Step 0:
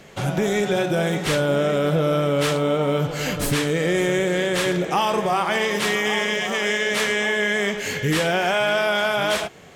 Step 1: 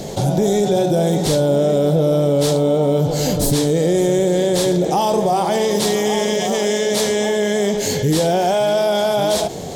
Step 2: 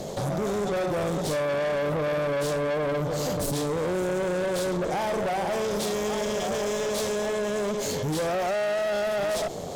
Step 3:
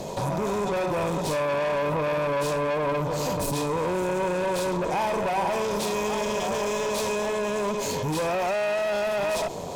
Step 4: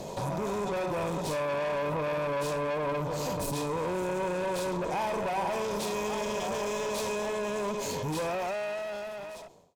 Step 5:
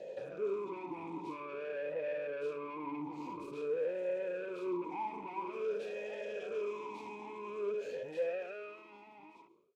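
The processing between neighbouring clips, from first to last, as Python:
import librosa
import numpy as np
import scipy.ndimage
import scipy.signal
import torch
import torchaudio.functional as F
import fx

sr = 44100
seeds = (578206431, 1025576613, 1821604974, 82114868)

y1 = fx.band_shelf(x, sr, hz=1800.0, db=-15.0, octaves=1.7)
y1 = fx.env_flatten(y1, sr, amount_pct=50)
y1 = F.gain(torch.from_numpy(y1), 4.0).numpy()
y2 = fx.peak_eq(y1, sr, hz=580.0, db=6.5, octaves=0.51)
y2 = fx.tube_stage(y2, sr, drive_db=19.0, bias=0.55)
y2 = F.gain(torch.from_numpy(y2), -5.5).numpy()
y3 = fx.small_body(y2, sr, hz=(970.0, 2500.0), ring_ms=45, db=14)
y4 = fx.fade_out_tail(y3, sr, length_s=1.55)
y4 = F.gain(torch.from_numpy(y4), -5.0).numpy()
y5 = fx.vowel_sweep(y4, sr, vowels='e-u', hz=0.49)
y5 = F.gain(torch.from_numpy(y5), 1.5).numpy()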